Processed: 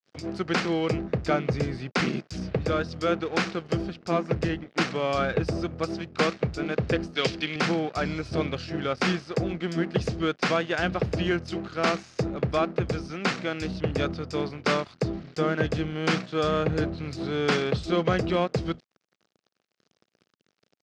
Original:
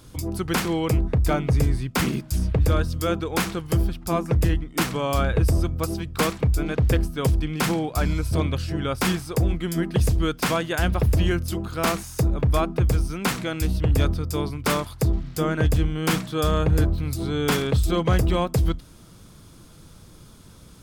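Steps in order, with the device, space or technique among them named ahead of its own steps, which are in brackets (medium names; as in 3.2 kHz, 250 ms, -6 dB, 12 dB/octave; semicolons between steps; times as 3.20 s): blown loudspeaker (crossover distortion -40.5 dBFS; cabinet simulation 190–5300 Hz, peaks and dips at 280 Hz -4 dB, 960 Hz -7 dB, 3.4 kHz -4 dB); 7.15–7.56 s: frequency weighting D; trim +1.5 dB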